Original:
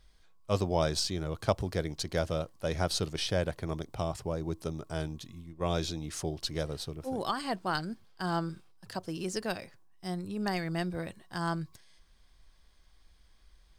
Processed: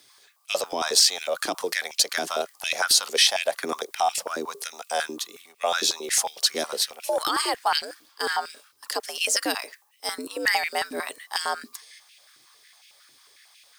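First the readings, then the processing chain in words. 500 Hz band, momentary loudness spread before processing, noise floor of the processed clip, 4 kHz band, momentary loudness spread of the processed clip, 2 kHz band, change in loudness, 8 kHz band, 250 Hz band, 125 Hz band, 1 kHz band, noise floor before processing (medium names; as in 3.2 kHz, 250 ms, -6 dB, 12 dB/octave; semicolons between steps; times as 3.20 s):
+4.0 dB, 9 LU, -60 dBFS, +14.5 dB, 14 LU, +13.0 dB, +9.5 dB, +17.0 dB, -4.0 dB, under -20 dB, +9.0 dB, -61 dBFS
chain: frequency shift +81 Hz; peak limiter -23 dBFS, peak gain reduction 10.5 dB; tilt EQ +4 dB/octave; step-sequenced high-pass 11 Hz 320–2500 Hz; trim +6.5 dB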